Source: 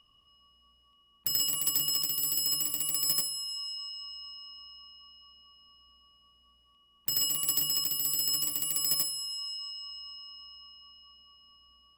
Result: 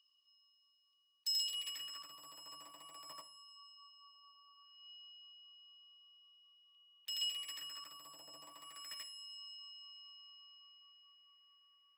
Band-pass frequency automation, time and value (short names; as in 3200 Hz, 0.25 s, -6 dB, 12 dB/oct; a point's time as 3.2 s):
band-pass, Q 2.7
1.29 s 5100 Hz
2.17 s 990 Hz
4.5 s 990 Hz
4.94 s 3100 Hz
7.2 s 3100 Hz
8.3 s 720 Hz
9.02 s 2000 Hz